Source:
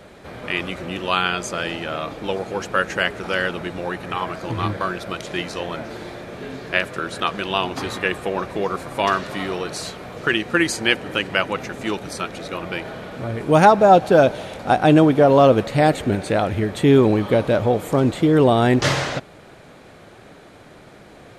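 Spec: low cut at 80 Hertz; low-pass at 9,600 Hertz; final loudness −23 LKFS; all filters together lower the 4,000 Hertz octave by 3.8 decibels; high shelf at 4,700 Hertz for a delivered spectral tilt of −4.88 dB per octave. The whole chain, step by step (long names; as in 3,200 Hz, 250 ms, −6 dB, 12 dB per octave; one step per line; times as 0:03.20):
high-pass filter 80 Hz
low-pass filter 9,600 Hz
parametric band 4,000 Hz −7.5 dB
high-shelf EQ 4,700 Hz +4 dB
level −3 dB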